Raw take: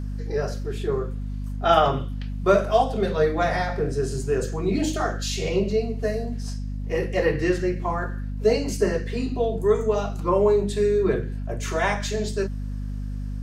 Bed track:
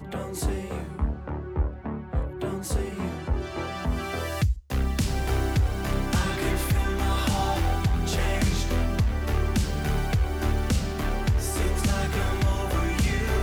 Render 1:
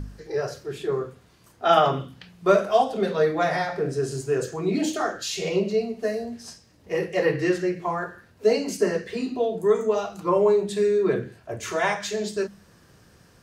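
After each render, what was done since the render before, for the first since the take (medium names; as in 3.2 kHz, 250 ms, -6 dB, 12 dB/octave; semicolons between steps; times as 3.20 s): de-hum 50 Hz, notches 5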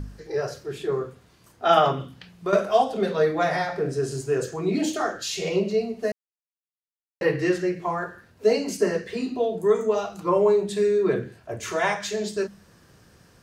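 1.92–2.53 s: compression 2.5:1, threshold -25 dBFS; 6.12–7.21 s: mute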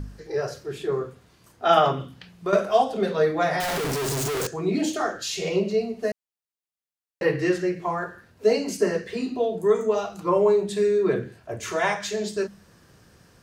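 3.60–4.47 s: one-bit comparator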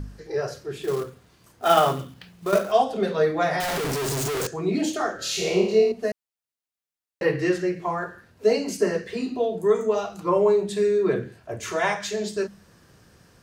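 0.82–2.72 s: short-mantissa float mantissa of 2-bit; 5.16–5.92 s: flutter echo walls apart 4.7 m, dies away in 0.61 s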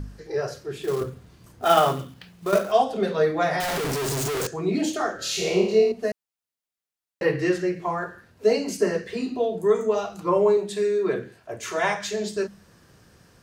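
1.01–1.65 s: bass shelf 290 Hz +10.5 dB; 10.57–11.78 s: bass shelf 200 Hz -9.5 dB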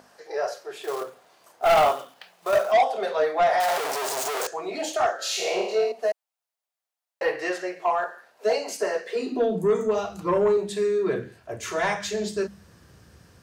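high-pass sweep 680 Hz -> 64 Hz, 9.02–10.06 s; saturation -14 dBFS, distortion -9 dB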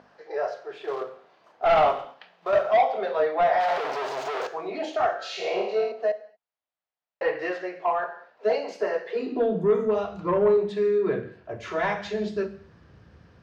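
distance through air 240 m; gated-style reverb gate 260 ms falling, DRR 12 dB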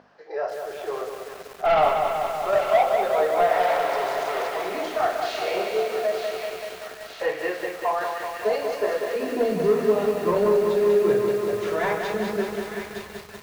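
feedback echo behind a high-pass 916 ms, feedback 70%, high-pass 1.8 kHz, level -6 dB; bit-crushed delay 191 ms, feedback 80%, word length 7-bit, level -5 dB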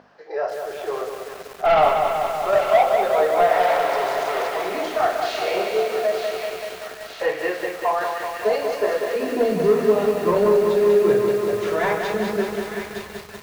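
trim +3 dB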